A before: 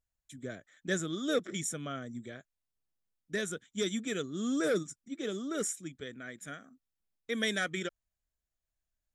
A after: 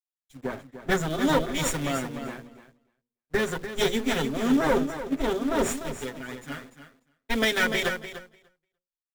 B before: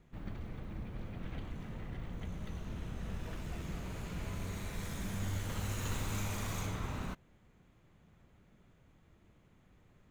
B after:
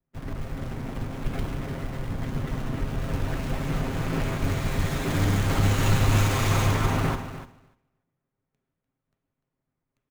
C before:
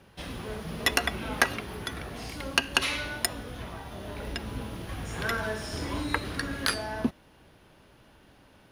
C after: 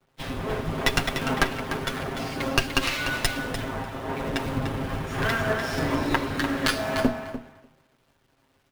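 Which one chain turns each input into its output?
minimum comb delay 7.5 ms; LPF 2300 Hz 6 dB/oct; notches 60/120/180/240/300/360/420/480/540 Hz; in parallel at -3 dB: companded quantiser 4-bit; on the sum: compressor 5:1, threshold -31 dBFS; on a send: feedback echo 0.297 s, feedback 26%, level -6 dB; on the sum: three-band expander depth 100%; match loudness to -27 LUFS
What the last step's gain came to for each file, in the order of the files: +9.0, +12.0, +8.0 dB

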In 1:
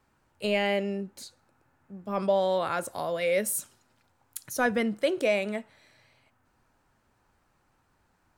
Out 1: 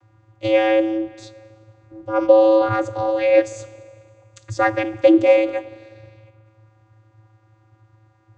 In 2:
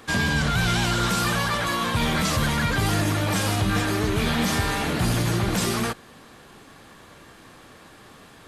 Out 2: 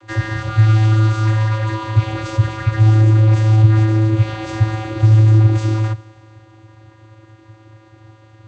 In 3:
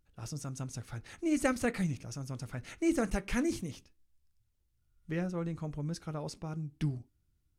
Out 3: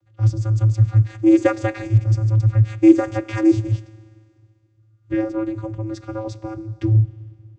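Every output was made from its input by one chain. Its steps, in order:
Schroeder reverb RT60 2.1 s, combs from 25 ms, DRR 17.5 dB; vocoder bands 16, square 109 Hz; normalise peaks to -1.5 dBFS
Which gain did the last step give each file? +12.0, +11.0, +18.5 dB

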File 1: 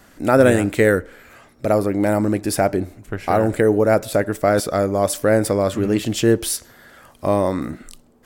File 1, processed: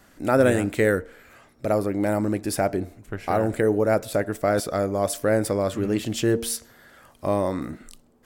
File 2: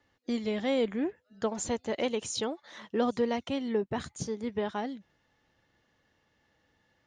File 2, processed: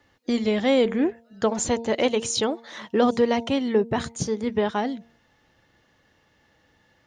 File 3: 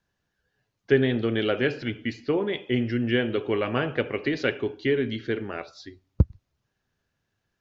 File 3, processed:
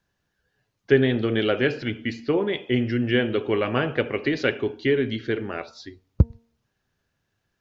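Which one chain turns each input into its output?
de-hum 230.7 Hz, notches 4; match loudness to -24 LUFS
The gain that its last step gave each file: -5.0, +8.5, +2.5 dB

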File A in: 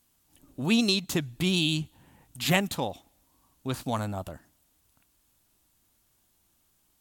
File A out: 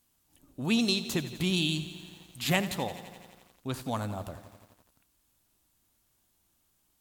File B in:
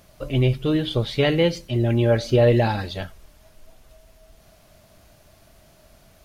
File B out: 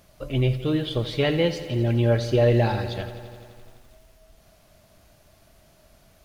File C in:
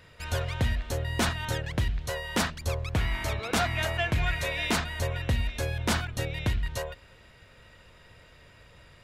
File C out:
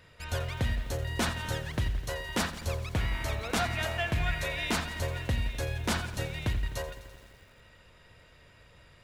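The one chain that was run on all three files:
lo-fi delay 85 ms, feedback 80%, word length 8-bit, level -14.5 dB; gain -3 dB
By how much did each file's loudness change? -3.0, -2.5, -2.5 LU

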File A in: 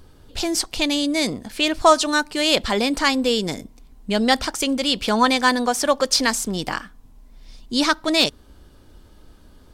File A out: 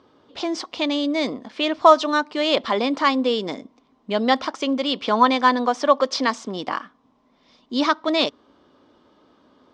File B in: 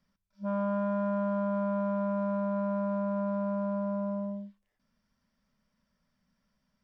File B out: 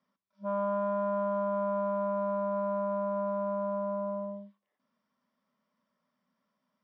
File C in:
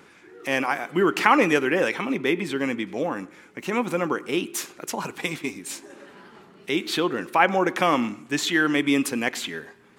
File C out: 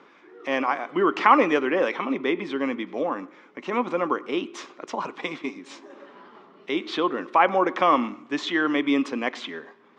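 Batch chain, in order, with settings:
speaker cabinet 260–4800 Hz, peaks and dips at 260 Hz +4 dB, 590 Hz +3 dB, 1100 Hz +7 dB, 1600 Hz -4 dB, 2600 Hz -4 dB, 4400 Hz -6 dB; gain -1 dB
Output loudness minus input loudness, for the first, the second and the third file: -1.0, -0.5, -0.5 LU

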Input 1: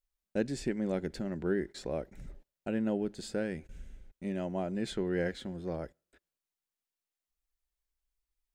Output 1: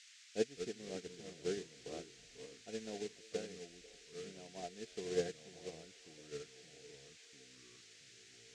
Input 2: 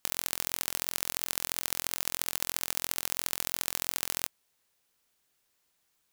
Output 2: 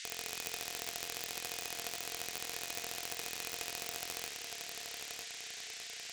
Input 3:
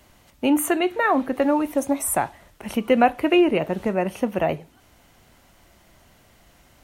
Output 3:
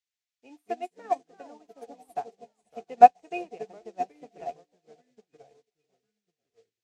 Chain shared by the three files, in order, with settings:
echoes that change speed 0.149 s, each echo -3 st, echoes 3, each echo -6 dB; small resonant body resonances 450/700/2500 Hz, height 14 dB, ringing for 70 ms; dynamic EQ 750 Hz, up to +7 dB, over -33 dBFS, Q 4.7; band noise 1700–7500 Hz -36 dBFS; HPF 46 Hz; high shelf 11000 Hz -5 dB; on a send: delay with a stepping band-pass 0.492 s, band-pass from 420 Hz, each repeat 0.7 oct, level -10 dB; on the sum: upward expander 2.5:1, over -31 dBFS; gain -8 dB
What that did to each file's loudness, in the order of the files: -10.0, -8.5, -3.0 LU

